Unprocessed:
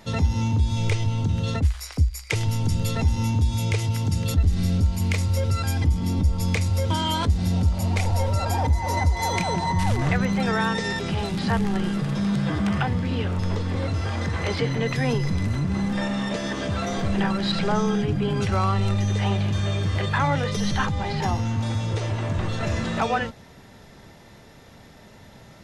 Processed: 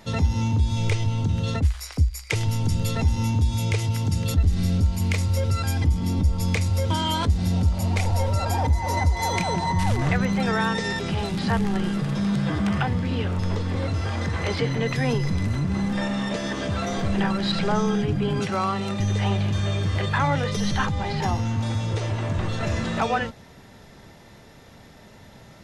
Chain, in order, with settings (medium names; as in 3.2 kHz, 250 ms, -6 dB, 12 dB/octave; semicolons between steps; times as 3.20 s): 18.39–19.00 s: high-pass 140 Hz 24 dB/octave